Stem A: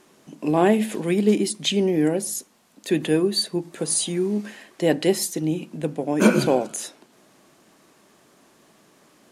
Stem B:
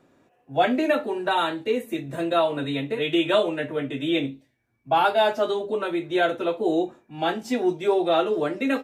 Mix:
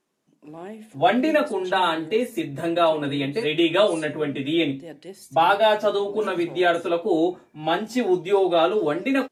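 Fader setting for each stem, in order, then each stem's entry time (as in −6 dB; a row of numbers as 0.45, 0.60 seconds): −20.0, +2.0 decibels; 0.00, 0.45 seconds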